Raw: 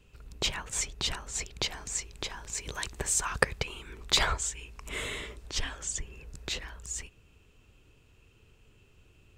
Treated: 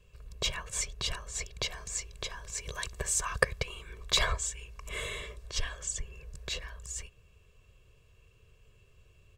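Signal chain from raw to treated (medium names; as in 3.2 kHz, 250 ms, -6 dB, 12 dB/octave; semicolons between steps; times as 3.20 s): comb 1.8 ms, depth 78%; trim -4 dB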